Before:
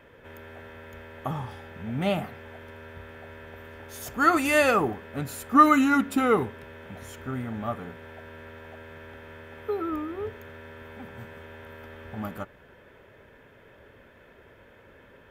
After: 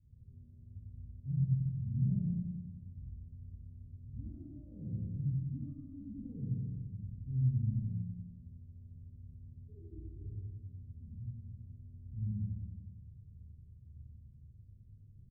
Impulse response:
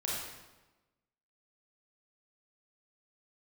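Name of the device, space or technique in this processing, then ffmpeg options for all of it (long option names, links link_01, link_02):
club heard from the street: -filter_complex "[0:a]asettb=1/sr,asplit=3[link_01][link_02][link_03];[link_01]atrim=end=4.224[link_04];[link_02]atrim=start=4.22:end=4.87,asetpts=PTS-STARTPTS,afade=type=in:duration=0.004:curve=qsin,afade=type=out:start_time=0.646:duration=0.004:curve=qsin,highpass=94[link_05];[link_03]atrim=start=4.866[link_06];[link_04][link_05]acrossfade=duration=0.004:curve1=hsin:curve2=qsin[link_07];[link_07][link_06]acrossfade=duration=0.004:curve1=qsin:curve2=hsin,aecho=1:1:91|182|273|364|455|546|637:0.631|0.341|0.184|0.0994|0.0537|0.029|0.0156,alimiter=limit=-15dB:level=0:latency=1:release=177,lowpass=frequency=140:width=0.5412,lowpass=frequency=140:width=1.3066[link_08];[1:a]atrim=start_sample=2205[link_09];[link_08][link_09]afir=irnorm=-1:irlink=0"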